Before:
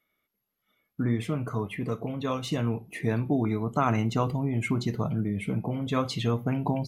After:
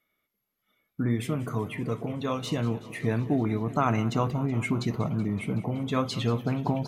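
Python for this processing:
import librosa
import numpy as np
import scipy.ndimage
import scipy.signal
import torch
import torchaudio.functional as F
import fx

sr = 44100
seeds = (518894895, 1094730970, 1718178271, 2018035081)

y = fx.high_shelf(x, sr, hz=8100.0, db=9.5, at=(1.1, 1.69))
y = fx.echo_warbled(y, sr, ms=188, feedback_pct=78, rate_hz=2.8, cents=95, wet_db=-17.5)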